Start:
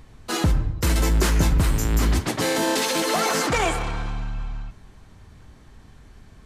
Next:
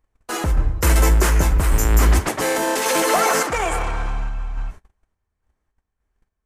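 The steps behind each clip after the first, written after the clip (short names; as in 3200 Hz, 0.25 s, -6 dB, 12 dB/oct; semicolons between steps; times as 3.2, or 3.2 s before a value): gate -40 dBFS, range -31 dB; graphic EQ 125/250/4000 Hz -10/-6/-9 dB; random-step tremolo; gain +8.5 dB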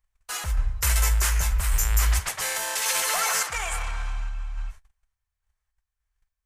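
passive tone stack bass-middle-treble 10-0-10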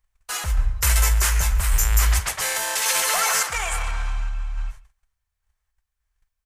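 echo 0.137 s -21 dB; gain +3.5 dB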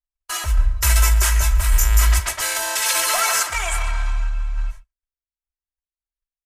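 gate -39 dBFS, range -26 dB; comb 3.1 ms, depth 71%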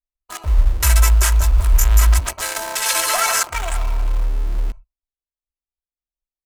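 Wiener smoothing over 25 samples; in parallel at -5 dB: bit-crush 5-bit; on the sum: gain -1 dB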